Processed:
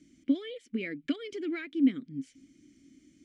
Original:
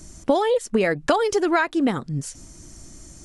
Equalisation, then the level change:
formant filter i
0.0 dB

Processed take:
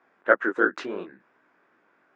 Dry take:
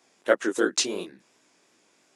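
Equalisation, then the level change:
low-pass with resonance 1,500 Hz, resonance Q 2.7
low-shelf EQ 150 Hz −3.5 dB
−1.0 dB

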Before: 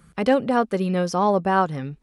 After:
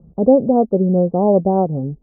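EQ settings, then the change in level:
Butterworth low-pass 710 Hz 36 dB per octave
+7.5 dB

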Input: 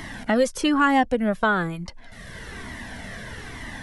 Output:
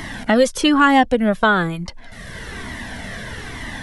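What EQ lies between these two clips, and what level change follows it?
dynamic equaliser 3,500 Hz, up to +5 dB, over −48 dBFS, Q 2.8
+5.5 dB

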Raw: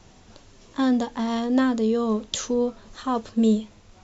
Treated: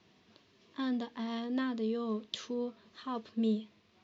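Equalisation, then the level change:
loudspeaker in its box 190–4,600 Hz, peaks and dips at 270 Hz −4 dB, 540 Hz −8 dB, 820 Hz −10 dB, 1,400 Hz −6 dB
−8.0 dB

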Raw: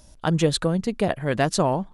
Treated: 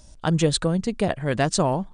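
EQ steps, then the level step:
linear-phase brick-wall low-pass 9,700 Hz
low-shelf EQ 130 Hz +4.5 dB
high-shelf EQ 6,500 Hz +7 dB
−1.0 dB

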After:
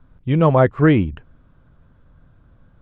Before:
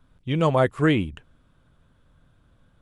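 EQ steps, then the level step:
low-pass filter 2,000 Hz 12 dB per octave
low-shelf EQ 190 Hz +4 dB
+5.0 dB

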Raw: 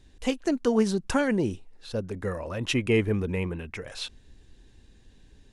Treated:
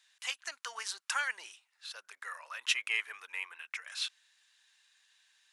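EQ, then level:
high-pass filter 1,200 Hz 24 dB per octave
0.0 dB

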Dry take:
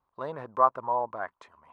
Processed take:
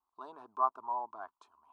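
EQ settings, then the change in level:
low-shelf EQ 320 Hz −10 dB
phaser with its sweep stopped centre 530 Hz, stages 6
−5.5 dB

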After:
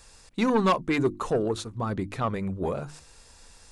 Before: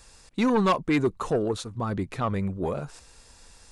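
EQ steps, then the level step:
mains-hum notches 50/100/150/200/250/300/350 Hz
0.0 dB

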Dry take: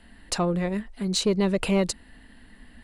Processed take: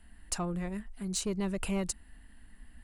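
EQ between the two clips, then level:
graphic EQ with 10 bands 125 Hz −7 dB, 250 Hz −7 dB, 500 Hz −12 dB, 1,000 Hz −5 dB, 2,000 Hz −6 dB, 4,000 Hz −12 dB
0.0 dB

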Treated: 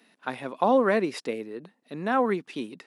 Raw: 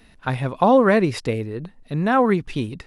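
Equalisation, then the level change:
high-pass filter 220 Hz 24 dB per octave
−6.0 dB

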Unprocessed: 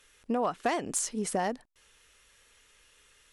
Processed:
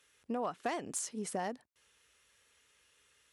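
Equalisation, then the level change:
high-pass filter 62 Hz 24 dB per octave
−7.0 dB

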